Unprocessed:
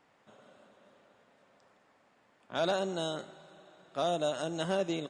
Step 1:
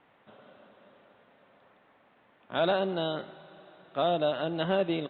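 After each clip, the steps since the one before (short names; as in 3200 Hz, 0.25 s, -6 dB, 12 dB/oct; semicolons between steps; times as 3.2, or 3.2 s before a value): steep low-pass 3800 Hz 72 dB/oct; gain +4 dB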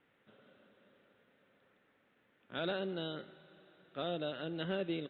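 band shelf 840 Hz -8.5 dB 1.1 oct; gain -7 dB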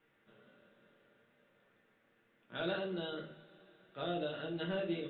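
shoebox room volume 31 m³, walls mixed, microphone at 0.58 m; gain -4 dB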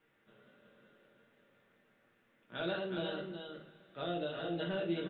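echo 0.368 s -5.5 dB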